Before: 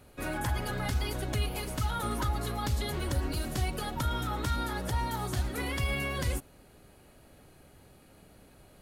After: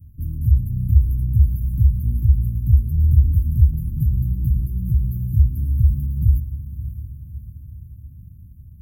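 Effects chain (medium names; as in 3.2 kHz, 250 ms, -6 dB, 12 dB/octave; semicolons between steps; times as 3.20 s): inverse Chebyshev band-stop 890–4500 Hz, stop band 80 dB; peaking EQ 81 Hz +12 dB 1.1 oct; 3.73–5.17 s: comb 5.9 ms, depth 73%; echo that smears into a reverb 593 ms, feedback 53%, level -12 dB; trim +8.5 dB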